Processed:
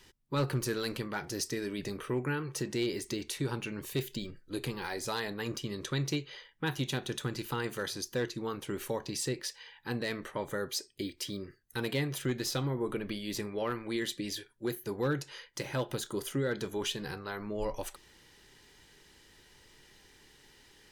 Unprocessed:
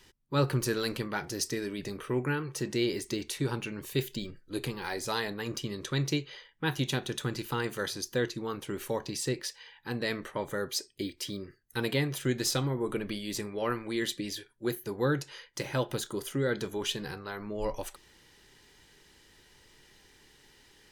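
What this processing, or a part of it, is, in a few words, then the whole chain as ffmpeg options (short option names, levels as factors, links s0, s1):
clipper into limiter: -filter_complex "[0:a]asoftclip=type=hard:threshold=0.0891,alimiter=limit=0.0631:level=0:latency=1:release=234,asettb=1/sr,asplit=3[s0][s1][s2];[s0]atrim=end=12.224[s3];[s1]atrim=start=12.22:end=13.92,asetpts=PTS-STARTPTS,afade=t=in:d=0.004:c=qsin,afade=t=out:st=1.696:d=0.004:c=qsin,equalizer=f=8000:t=o:w=0.84:g=-5[s4];[s2]atrim=start=13.916[s5];[s3][s4]acrossfade=d=0.004:c1=hsin:c2=qsin[s6];[s6][s5]acrossfade=d=0.004:c1=qsin:c2=hsin"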